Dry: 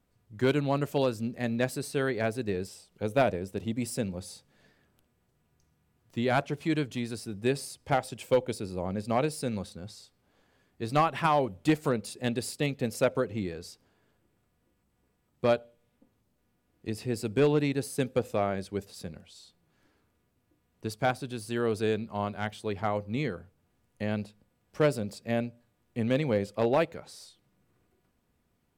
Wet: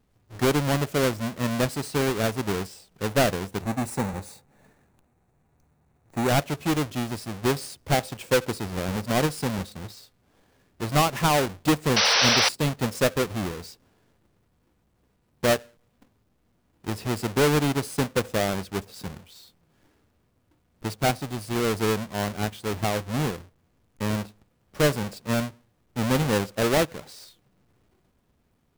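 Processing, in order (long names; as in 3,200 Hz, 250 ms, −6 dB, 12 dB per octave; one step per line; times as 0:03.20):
each half-wave held at its own peak
0:03.62–0:06.29: thirty-one-band graphic EQ 800 Hz +6 dB, 3,150 Hz −10 dB, 5,000 Hz −10 dB, 12,500 Hz −5 dB
0:11.96–0:12.49: sound drawn into the spectrogram noise 420–6,100 Hz −20 dBFS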